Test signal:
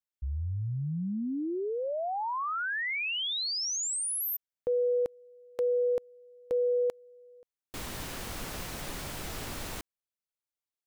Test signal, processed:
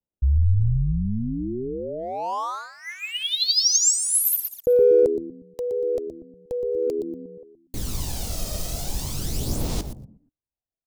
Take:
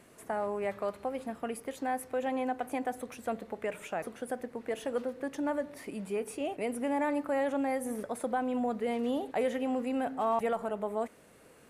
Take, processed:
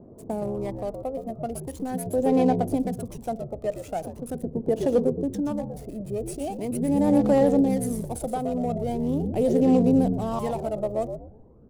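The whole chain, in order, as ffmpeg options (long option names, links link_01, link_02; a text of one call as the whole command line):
ffmpeg -i in.wav -filter_complex "[0:a]equalizer=frequency=1700:width_type=o:width=2:gain=-15,asplit=5[link_01][link_02][link_03][link_04][link_05];[link_02]adelay=119,afreqshift=-77,volume=-6.5dB[link_06];[link_03]adelay=238,afreqshift=-154,volume=-15.4dB[link_07];[link_04]adelay=357,afreqshift=-231,volume=-24.2dB[link_08];[link_05]adelay=476,afreqshift=-308,volume=-33.1dB[link_09];[link_01][link_06][link_07][link_08][link_09]amix=inputs=5:normalize=0,aphaser=in_gain=1:out_gain=1:delay=1.6:decay=0.55:speed=0.41:type=sinusoidal,acrossover=split=970[link_10][link_11];[link_11]aeval=exprs='sgn(val(0))*max(abs(val(0))-0.00237,0)':channel_layout=same[link_12];[link_10][link_12]amix=inputs=2:normalize=0,adynamicequalizer=threshold=0.002:dfrequency=5300:dqfactor=0.8:tfrequency=5300:tqfactor=0.8:attack=5:release=100:ratio=0.375:range=3.5:mode=boostabove:tftype=bell,volume=8dB" out.wav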